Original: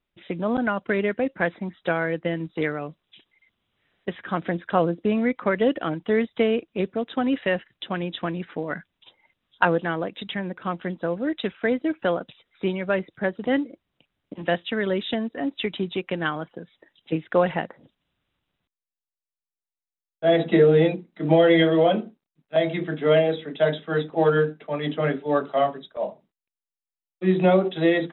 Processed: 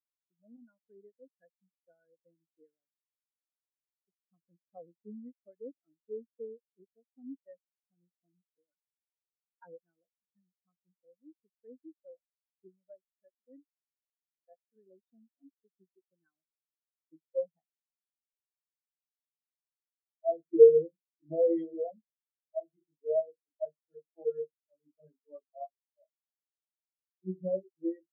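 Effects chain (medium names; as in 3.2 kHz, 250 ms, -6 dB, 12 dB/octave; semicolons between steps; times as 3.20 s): 12.94–14.76 s: high-pass 250 Hz 6 dB/octave; spectral contrast expander 4:1; trim -3.5 dB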